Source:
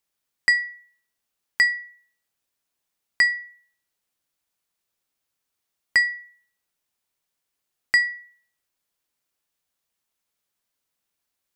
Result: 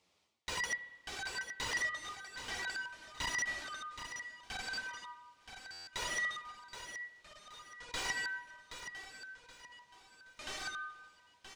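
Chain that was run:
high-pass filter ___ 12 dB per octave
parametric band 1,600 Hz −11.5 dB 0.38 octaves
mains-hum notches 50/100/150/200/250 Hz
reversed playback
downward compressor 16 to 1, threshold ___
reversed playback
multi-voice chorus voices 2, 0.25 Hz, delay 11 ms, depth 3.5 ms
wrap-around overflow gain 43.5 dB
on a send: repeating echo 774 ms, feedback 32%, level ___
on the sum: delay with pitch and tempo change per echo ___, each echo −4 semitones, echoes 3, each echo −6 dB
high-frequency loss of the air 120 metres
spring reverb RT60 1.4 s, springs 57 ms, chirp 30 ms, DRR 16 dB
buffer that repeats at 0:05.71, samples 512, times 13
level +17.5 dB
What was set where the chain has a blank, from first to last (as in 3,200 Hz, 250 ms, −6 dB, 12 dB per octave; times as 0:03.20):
64 Hz, −33 dBFS, −9 dB, 467 ms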